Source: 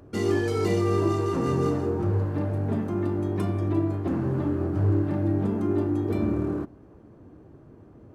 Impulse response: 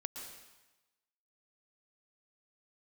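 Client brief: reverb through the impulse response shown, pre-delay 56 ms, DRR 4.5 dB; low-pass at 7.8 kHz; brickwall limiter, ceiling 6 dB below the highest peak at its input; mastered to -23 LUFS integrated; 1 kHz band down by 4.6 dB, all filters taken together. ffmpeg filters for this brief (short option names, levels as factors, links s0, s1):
-filter_complex "[0:a]lowpass=7800,equalizer=f=1000:t=o:g=-6,alimiter=limit=0.112:level=0:latency=1,asplit=2[s0][s1];[1:a]atrim=start_sample=2205,adelay=56[s2];[s1][s2]afir=irnorm=-1:irlink=0,volume=0.708[s3];[s0][s3]amix=inputs=2:normalize=0,volume=1.88"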